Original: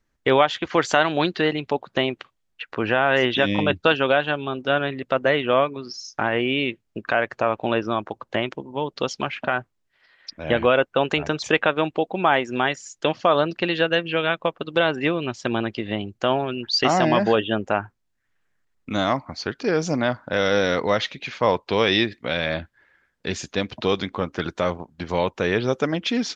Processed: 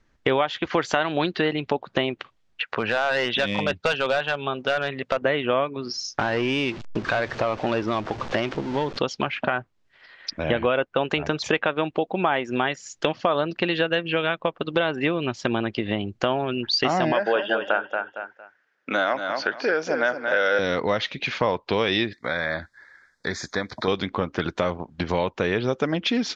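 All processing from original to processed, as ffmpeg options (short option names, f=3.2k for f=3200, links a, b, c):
-filter_complex "[0:a]asettb=1/sr,asplit=3[a][b][c];[a]atrim=end=2.624[d];[b]atrim=start=2.62:end=5.22,asetpts=PTS-STARTPTS,afade=t=in:d=0.004:c=qsin,afade=t=out:st=2.596:d=0.004:c=qsin,highpass=f=180:p=1,equalizer=f=310:w=2.8:g=-10,asoftclip=type=hard:threshold=-16dB[e];[c]atrim=start=5.216[f];[d][e]acrossfade=d=0.004:c1=hsin:c2=qsin[g];[g][f]acrossfade=d=0.004:c1=qsin:c2=hsin,asettb=1/sr,asplit=3[h][i][j];[h]atrim=end=6.194[k];[i]atrim=start=6.19:end=8.99,asetpts=PTS-STARTPTS,afade=t=in:d=0.004:c=qsin,afade=t=out:st=2.796:d=0.004:c=qsin,aeval=exprs='val(0)+0.5*0.0211*sgn(val(0))':c=same,lowpass=f=6.8k:w=0.5412,lowpass=f=6.8k:w=1.3066,aeval=exprs='(tanh(6.31*val(0)+0.25)-tanh(0.25))/6.31':c=same[l];[j]atrim=start=8.986[m];[k][l]acrossfade=d=0.004:c1=hsin:c2=qsin[n];[n][m]acrossfade=d=0.004:c1=qsin:c2=hsin,asettb=1/sr,asplit=3[o][p][q];[o]atrim=end=17.124[r];[p]atrim=start=17.12:end=20.59,asetpts=PTS-STARTPTS,afade=t=in:d=0.004:c=qsin,afade=t=out:st=3.466:d=0.004:c=qsin,highpass=410,equalizer=f=550:t=q:w=4:g=5,equalizer=f=1.1k:t=q:w=4:g=-4,equalizer=f=1.5k:t=q:w=4:g=10,equalizer=f=4k:t=q:w=4:g=-5,lowpass=f=6k:w=0.5412,lowpass=f=6k:w=1.3066,aecho=1:1:229|458|687:0.376|0.0827|0.0182,atrim=end_sample=153027[s];[q]atrim=start=20.586[t];[r][s]acrossfade=d=0.004:c1=hsin:c2=qsin[u];[u][t]acrossfade=d=0.004:c1=qsin:c2=hsin,asettb=1/sr,asplit=3[v][w][x];[v]atrim=end=22.134[y];[w]atrim=start=22.13:end=23.88,asetpts=PTS-STARTPTS,afade=t=in:d=0.004:c=qsin,afade=t=out:st=1.746:d=0.004:c=qsin,acrossover=split=2800[z][aa];[aa]acompressor=threshold=-46dB:ratio=4:attack=1:release=60[ab];[z][ab]amix=inputs=2:normalize=0,asuperstop=centerf=2800:order=4:qfactor=1.4,tiltshelf=f=1.3k:g=-9[ac];[x]atrim=start=23.876[ad];[y][ac]acrossfade=d=0.004:c1=hsin:c2=qsin[ae];[ae][ad]acrossfade=d=0.004:c1=qsin:c2=hsin,lowpass=5.5k,acompressor=threshold=-33dB:ratio=2.5,volume=8.5dB"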